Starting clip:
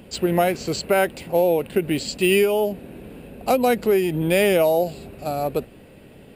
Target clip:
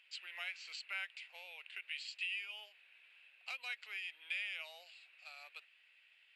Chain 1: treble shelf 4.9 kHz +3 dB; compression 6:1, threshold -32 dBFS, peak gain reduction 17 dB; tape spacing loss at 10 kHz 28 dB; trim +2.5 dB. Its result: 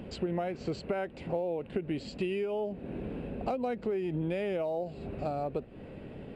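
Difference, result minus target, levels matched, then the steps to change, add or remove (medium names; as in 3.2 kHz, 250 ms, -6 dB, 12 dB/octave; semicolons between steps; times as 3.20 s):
2 kHz band -13.5 dB
add first: ladder high-pass 2 kHz, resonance 40%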